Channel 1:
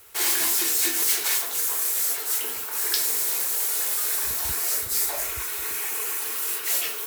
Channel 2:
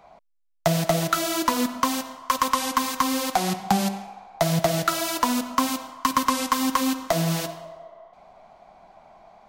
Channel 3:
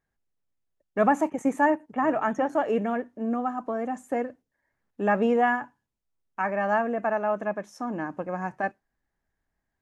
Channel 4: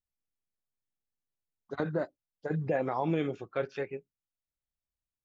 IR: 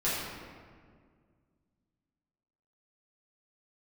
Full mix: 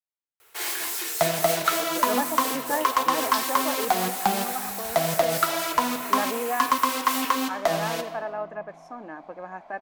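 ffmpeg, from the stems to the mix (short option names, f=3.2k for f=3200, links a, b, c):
-filter_complex "[0:a]adelay=400,volume=-2.5dB[a];[1:a]adelay=550,volume=-0.5dB,asplit=2[b][c];[c]volume=-19dB[d];[2:a]adelay=1100,volume=-5.5dB[e];[3:a]highpass=150,volume=-4.5dB[f];[4:a]atrim=start_sample=2205[g];[d][g]afir=irnorm=-1:irlink=0[h];[a][b][e][f][h]amix=inputs=5:normalize=0,bass=f=250:g=-12,treble=f=4k:g=-6"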